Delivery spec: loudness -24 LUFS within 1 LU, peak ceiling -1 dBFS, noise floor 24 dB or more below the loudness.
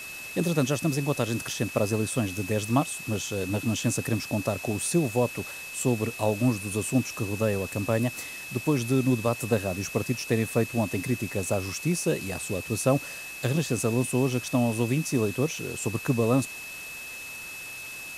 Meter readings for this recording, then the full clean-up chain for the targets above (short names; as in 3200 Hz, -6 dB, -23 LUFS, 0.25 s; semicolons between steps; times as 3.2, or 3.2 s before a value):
steady tone 2600 Hz; tone level -38 dBFS; noise floor -39 dBFS; noise floor target -52 dBFS; loudness -27.5 LUFS; peak -8.5 dBFS; loudness target -24.0 LUFS
-> notch 2600 Hz, Q 30; noise print and reduce 13 dB; gain +3.5 dB